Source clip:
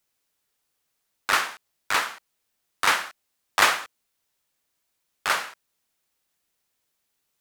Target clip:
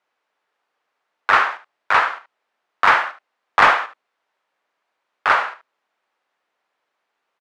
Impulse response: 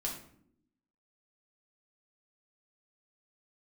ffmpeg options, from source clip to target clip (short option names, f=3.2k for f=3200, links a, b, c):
-filter_complex "[0:a]bandpass=f=920:t=q:w=0.57:csg=0,aecho=1:1:75:0.211,asplit=2[a][b];[b]highpass=f=720:p=1,volume=14dB,asoftclip=type=tanh:threshold=-4.5dB[c];[a][c]amix=inputs=2:normalize=0,lowpass=f=1.4k:p=1,volume=-6dB,volume=6dB"